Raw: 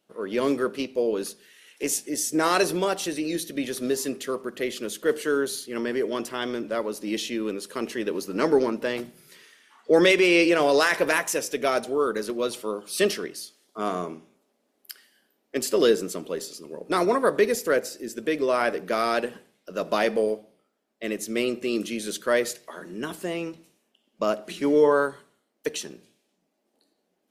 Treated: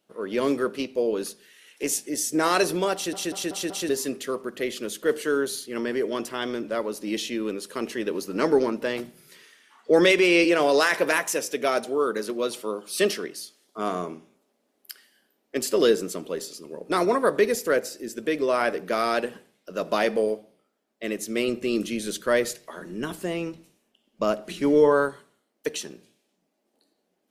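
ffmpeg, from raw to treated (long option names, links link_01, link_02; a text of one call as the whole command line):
ffmpeg -i in.wav -filter_complex "[0:a]asettb=1/sr,asplit=3[link_01][link_02][link_03];[link_01]atrim=end=10.444[link_04];[link_02]atrim=start=10.44:end=13.4,asetpts=PTS-STARTPTS,afade=type=in:duration=0.004:curve=qsin,afade=type=out:start_time=2.956:duration=0.004:curve=qsin,highpass=140[link_05];[link_03]atrim=start=13.396[link_06];[link_04][link_05]acrossfade=duration=0.004:curve1=hsin:curve2=qsin[link_07];[link_07][link_06]acrossfade=duration=0.004:curve1=qsin:curve2=hsin,asettb=1/sr,asplit=3[link_08][link_09][link_10];[link_08]atrim=end=21.484[link_11];[link_09]atrim=start=21.48:end=25.09,asetpts=PTS-STARTPTS,afade=type=in:duration=0.004:curve=qsin,afade=type=out:start_time=3.606:duration=0.004:curve=qsin,lowshelf=frequency=110:gain=11.5[link_12];[link_10]atrim=start=25.086[link_13];[link_11][link_12]acrossfade=duration=0.004:curve1=hsin:curve2=qsin[link_14];[link_14][link_13]acrossfade=duration=0.004:curve1=qsin:curve2=hsin,asplit=6[link_15][link_16][link_17][link_18][link_19][link_20];[link_15]atrim=end=3.132[link_21];[link_16]atrim=start=2.938:end=3.132[link_22];[link_17]atrim=start=2.938:end=3.132[link_23];[link_18]atrim=start=2.938:end=3.132[link_24];[link_19]atrim=start=2.938:end=3.132[link_25];[link_20]atrim=start=3.888[link_26];[link_21][link_22]acrossfade=duration=0.004:curve1=hsin:curve2=hsin[link_27];[link_27][link_23]acrossfade=duration=0.004:curve1=hsin:curve2=hsin[link_28];[link_28][link_24]acrossfade=duration=0.004:curve1=hsin:curve2=hsin[link_29];[link_29][link_25]acrossfade=duration=0.004:curve1=hsin:curve2=hsin[link_30];[link_30][link_26]acrossfade=duration=0.004:curve1=hsin:curve2=hsin" out.wav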